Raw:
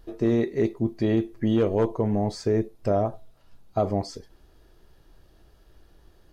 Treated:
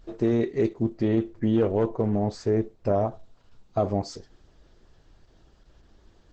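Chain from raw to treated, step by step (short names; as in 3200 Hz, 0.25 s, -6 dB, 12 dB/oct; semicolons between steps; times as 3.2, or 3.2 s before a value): 0.92–2.94 high shelf 3800 Hz -9 dB; Opus 10 kbps 48000 Hz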